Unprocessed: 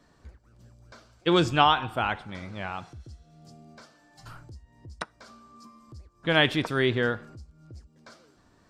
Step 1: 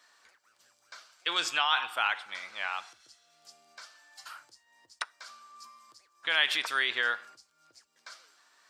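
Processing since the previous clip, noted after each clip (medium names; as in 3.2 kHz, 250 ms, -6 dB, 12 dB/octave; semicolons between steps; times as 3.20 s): peak limiter -17 dBFS, peak gain reduction 9.5 dB; high-pass 1.4 kHz 12 dB/octave; trim +6 dB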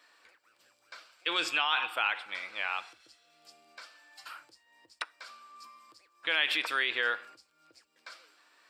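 graphic EQ with 31 bands 315 Hz +8 dB, 500 Hz +6 dB, 2.5 kHz +6 dB, 6.3 kHz -9 dB, 10 kHz -4 dB; in parallel at +1.5 dB: peak limiter -20 dBFS, peak gain reduction 11 dB; on the sum: trim -7 dB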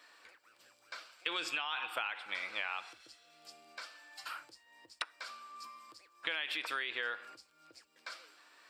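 compression 10:1, threshold -35 dBFS, peak gain reduction 13 dB; trim +2 dB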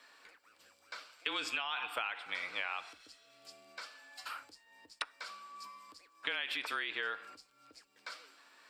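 frequency shift -28 Hz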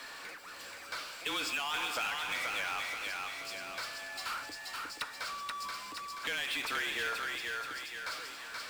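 thinning echo 479 ms, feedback 35%, high-pass 510 Hz, level -5 dB; power-law waveshaper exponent 0.5; trim -6 dB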